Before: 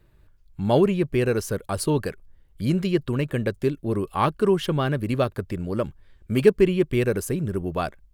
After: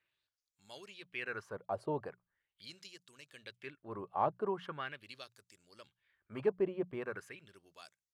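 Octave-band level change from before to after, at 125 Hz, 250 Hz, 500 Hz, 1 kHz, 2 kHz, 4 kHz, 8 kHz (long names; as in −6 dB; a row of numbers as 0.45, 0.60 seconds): −26.5 dB, −22.0 dB, −17.0 dB, −11.0 dB, −12.0 dB, −15.5 dB, below −20 dB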